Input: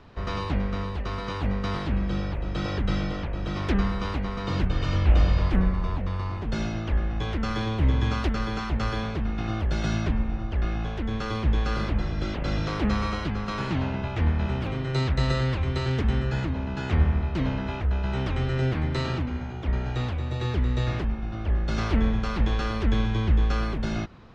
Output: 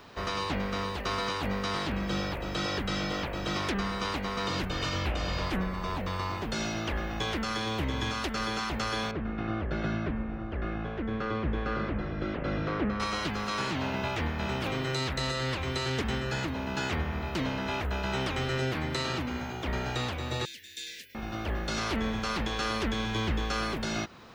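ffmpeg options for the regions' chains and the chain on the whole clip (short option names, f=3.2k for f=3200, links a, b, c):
-filter_complex "[0:a]asettb=1/sr,asplit=3[a][b][c];[a]atrim=end=9.114[d];[b]atrim=start=9.11:end=13,asetpts=PTS-STARTPTS,afade=t=in:d=0.004:c=qsin,afade=t=out:st=3.886:d=0.004:c=qsin,lowpass=1.5k,equalizer=f=870:w=1.9:g=-7[e];[c]atrim=start=12.996[f];[d][e]acrossfade=d=0.004:c1=hsin:c2=qsin[g];[g][f]acrossfade=d=0.004:c1=qsin:c2=hsin,asettb=1/sr,asplit=3[h][i][j];[h]atrim=end=20.454[k];[i]atrim=start=20.45:end=21.15,asetpts=PTS-STARTPTS,afade=t=in:d=0.004:c=qsin,afade=t=out:st=0.696:d=0.004:c=qsin,aderivative,afreqshift=-160,asuperstop=centerf=940:order=12:qfactor=0.84[l];[j]atrim=start=21.146[m];[k][l]acrossfade=d=0.004:c1=hsin:c2=qsin[n];[n][m]acrossfade=d=0.004:c1=qsin:c2=hsin,aemphasis=mode=production:type=bsi,alimiter=limit=-24dB:level=0:latency=1:release=367,volume=3.5dB"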